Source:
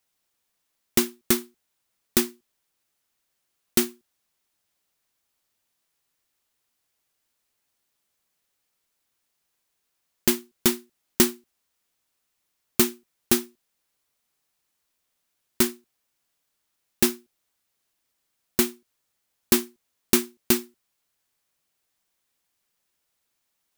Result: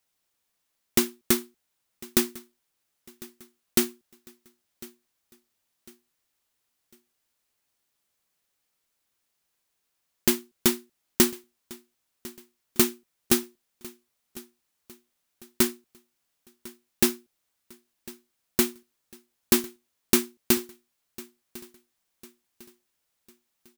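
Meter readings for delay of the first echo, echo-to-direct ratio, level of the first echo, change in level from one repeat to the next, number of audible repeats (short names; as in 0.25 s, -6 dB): 1.051 s, -20.0 dB, -21.0 dB, -8.0 dB, 2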